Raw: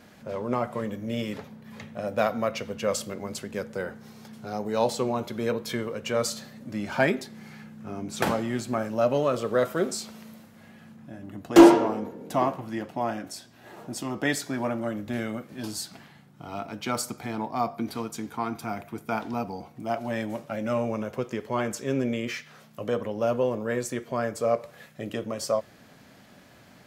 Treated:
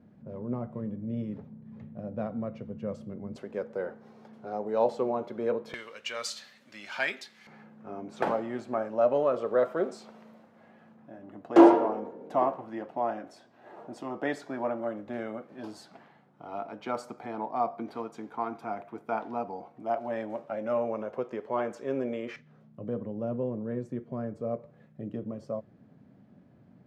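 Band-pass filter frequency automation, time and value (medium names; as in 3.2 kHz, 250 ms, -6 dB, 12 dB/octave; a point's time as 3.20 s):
band-pass filter, Q 0.88
150 Hz
from 3.36 s 550 Hz
from 5.74 s 2.9 kHz
from 7.47 s 650 Hz
from 22.36 s 170 Hz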